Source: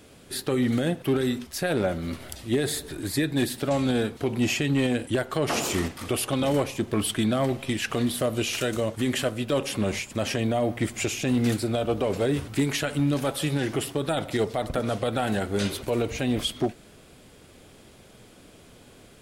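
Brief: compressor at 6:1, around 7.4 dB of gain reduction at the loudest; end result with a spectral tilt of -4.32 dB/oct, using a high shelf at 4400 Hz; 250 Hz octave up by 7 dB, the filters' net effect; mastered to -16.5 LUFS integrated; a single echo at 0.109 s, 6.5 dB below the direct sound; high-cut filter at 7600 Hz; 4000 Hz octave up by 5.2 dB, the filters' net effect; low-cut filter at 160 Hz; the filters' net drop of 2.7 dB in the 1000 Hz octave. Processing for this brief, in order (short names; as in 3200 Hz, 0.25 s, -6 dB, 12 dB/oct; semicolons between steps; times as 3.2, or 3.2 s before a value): HPF 160 Hz; LPF 7600 Hz; bell 250 Hz +9 dB; bell 1000 Hz -5.5 dB; bell 4000 Hz +5.5 dB; high shelf 4400 Hz +3.5 dB; compressor 6:1, threshold -21 dBFS; echo 0.109 s -6.5 dB; gain +9 dB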